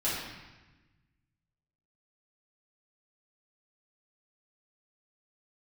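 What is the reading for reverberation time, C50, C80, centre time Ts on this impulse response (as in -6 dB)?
1.1 s, -0.5 dB, 2.5 dB, 80 ms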